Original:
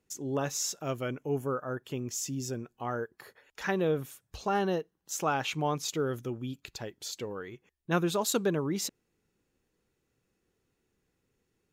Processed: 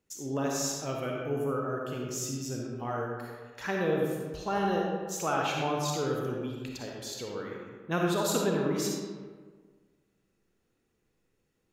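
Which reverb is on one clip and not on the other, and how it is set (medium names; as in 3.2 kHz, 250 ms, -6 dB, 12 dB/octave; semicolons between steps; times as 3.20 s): algorithmic reverb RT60 1.6 s, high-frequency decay 0.55×, pre-delay 15 ms, DRR -1.5 dB; trim -2.5 dB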